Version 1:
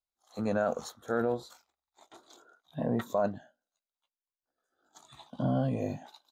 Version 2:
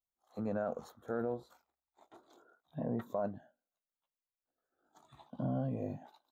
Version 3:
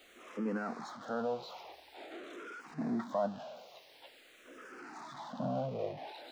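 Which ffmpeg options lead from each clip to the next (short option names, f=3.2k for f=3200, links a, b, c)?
-filter_complex "[0:a]equalizer=f=6k:w=0.35:g=-14,asplit=2[a][b];[b]acompressor=threshold=-37dB:ratio=6,volume=0dB[c];[a][c]amix=inputs=2:normalize=0,volume=-8dB"
-filter_complex "[0:a]aeval=exprs='val(0)+0.5*0.00562*sgn(val(0))':c=same,acrossover=split=190 5500:gain=0.1 1 0.0891[a][b][c];[a][b][c]amix=inputs=3:normalize=0,asplit=2[d][e];[e]afreqshift=-0.47[f];[d][f]amix=inputs=2:normalize=1,volume=5.5dB"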